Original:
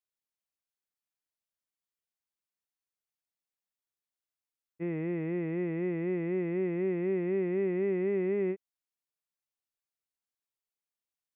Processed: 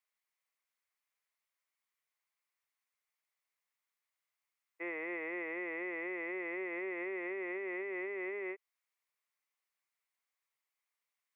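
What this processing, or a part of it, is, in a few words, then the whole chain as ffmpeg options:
laptop speaker: -af "highpass=f=440:w=0.5412,highpass=f=440:w=1.3066,equalizer=f=1.1k:t=o:w=0.55:g=7.5,equalizer=f=2.1k:t=o:w=0.53:g=11,alimiter=level_in=9.5dB:limit=-24dB:level=0:latency=1:release=181,volume=-9.5dB,volume=1dB"

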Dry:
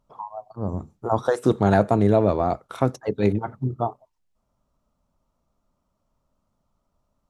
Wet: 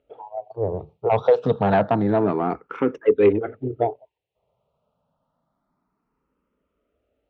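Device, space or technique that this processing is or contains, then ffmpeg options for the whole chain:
barber-pole phaser into a guitar amplifier: -filter_complex "[0:a]asplit=2[a][b];[b]afreqshift=0.28[c];[a][c]amix=inputs=2:normalize=1,asoftclip=type=tanh:threshold=-16dB,highpass=80,equalizer=f=86:t=q:w=4:g=-8,equalizer=f=130:t=q:w=4:g=-4,equalizer=f=210:t=q:w=4:g=-6,equalizer=f=450:t=q:w=4:g=9,equalizer=f=1.1k:t=q:w=4:g=-5,equalizer=f=2.7k:t=q:w=4:g=3,lowpass=f=3.4k:w=0.5412,lowpass=f=3.4k:w=1.3066,volume=6dB"

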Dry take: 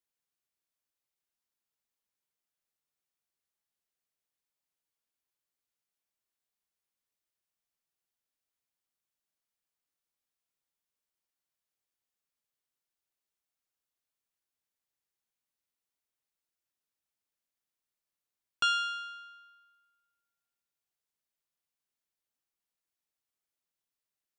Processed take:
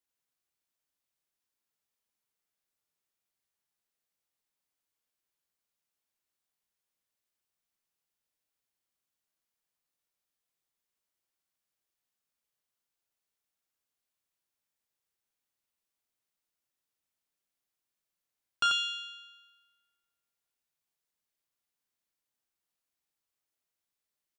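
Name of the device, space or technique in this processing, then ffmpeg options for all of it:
slapback doubling: -filter_complex "[0:a]asplit=3[a][b][c];[b]adelay=33,volume=-9dB[d];[c]adelay=89,volume=-4.5dB[e];[a][d][e]amix=inputs=3:normalize=0"

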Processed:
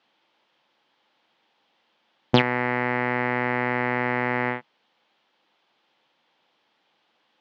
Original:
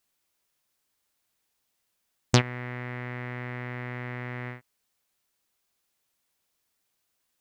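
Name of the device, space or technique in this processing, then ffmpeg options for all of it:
overdrive pedal into a guitar cabinet: -filter_complex "[0:a]asplit=2[a][b];[b]highpass=f=720:p=1,volume=23dB,asoftclip=type=tanh:threshold=-3dB[c];[a][c]amix=inputs=2:normalize=0,lowpass=f=2.2k:p=1,volume=-6dB,highpass=96,equalizer=f=150:t=q:w=4:g=8,equalizer=f=220:t=q:w=4:g=9,equalizer=f=320:t=q:w=4:g=8,equalizer=f=520:t=q:w=4:g=6,equalizer=f=850:t=q:w=4:g=8,equalizer=f=3.2k:t=q:w=4:g=6,lowpass=f=4.5k:w=0.5412,lowpass=f=4.5k:w=1.3066,volume=-1.5dB"

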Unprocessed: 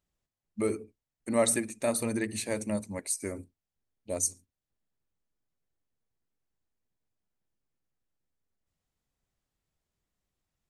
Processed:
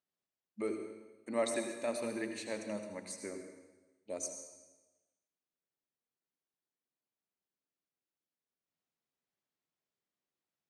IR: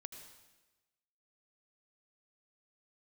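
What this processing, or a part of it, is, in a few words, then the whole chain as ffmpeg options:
supermarket ceiling speaker: -filter_complex "[0:a]highpass=230,lowpass=6k[a];[1:a]atrim=start_sample=2205[b];[a][b]afir=irnorm=-1:irlink=0,volume=-1dB"

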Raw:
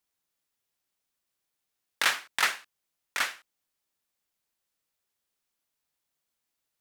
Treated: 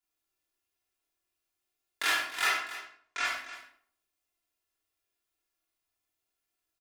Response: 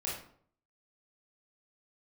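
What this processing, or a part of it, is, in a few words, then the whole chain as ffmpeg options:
microphone above a desk: -filter_complex "[0:a]asettb=1/sr,asplit=3[a][b][c];[a]atrim=end=2.464[d];[b]atrim=start=2.46:end=3.25,asetpts=PTS-STARTPTS,afade=t=in:d=0.004:c=qsin,afade=t=out:st=0.786:d=0.004:c=qsin,lowpass=f=7.2k:w=0.5412,lowpass=f=7.2k:w=1.3066[e];[c]atrim=start=3.246[f];[d][e]acrossfade=d=0.004:c1=hsin:c2=qsin[g];[g][f]acrossfade=d=0.004:c1=qsin:c2=hsin,aecho=1:1:2.9:0.72[h];[1:a]atrim=start_sample=2205[i];[h][i]afir=irnorm=-1:irlink=0,aecho=1:1:74|282:0.316|0.2,volume=-6dB"

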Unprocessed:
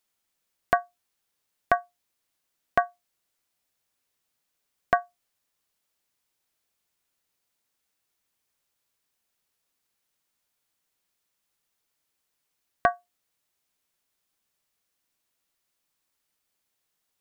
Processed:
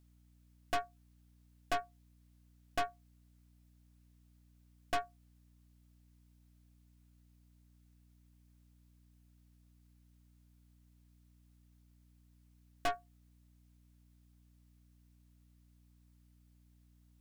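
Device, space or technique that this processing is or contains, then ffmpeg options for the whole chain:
valve amplifier with mains hum: -af "aeval=exprs='(tanh(44.7*val(0)+0.8)-tanh(0.8))/44.7':c=same,aeval=exprs='val(0)+0.000447*(sin(2*PI*60*n/s)+sin(2*PI*2*60*n/s)/2+sin(2*PI*3*60*n/s)/3+sin(2*PI*4*60*n/s)/4+sin(2*PI*5*60*n/s)/5)':c=same,volume=3dB"

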